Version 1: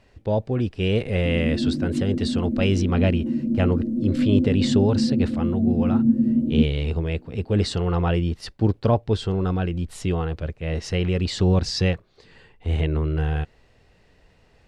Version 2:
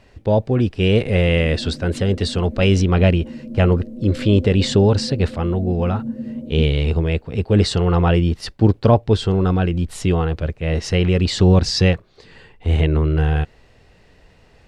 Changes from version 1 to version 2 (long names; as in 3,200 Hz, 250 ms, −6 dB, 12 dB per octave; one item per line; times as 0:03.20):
speech +6.0 dB
background: add low shelf with overshoot 410 Hz −6.5 dB, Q 3